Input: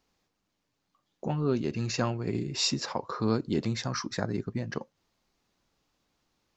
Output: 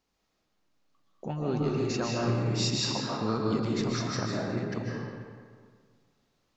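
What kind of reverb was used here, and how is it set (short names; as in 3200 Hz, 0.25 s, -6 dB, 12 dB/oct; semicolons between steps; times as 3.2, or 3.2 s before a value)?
digital reverb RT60 1.8 s, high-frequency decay 0.7×, pre-delay 0.105 s, DRR -3.5 dB; gain -4 dB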